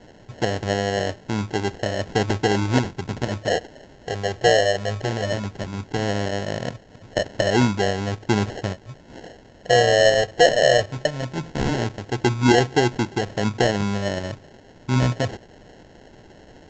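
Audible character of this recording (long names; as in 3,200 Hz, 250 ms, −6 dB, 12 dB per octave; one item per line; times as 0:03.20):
a quantiser's noise floor 8 bits, dither triangular
phaser sweep stages 8, 0.17 Hz, lowest notch 250–1,600 Hz
aliases and images of a low sample rate 1,200 Hz, jitter 0%
mu-law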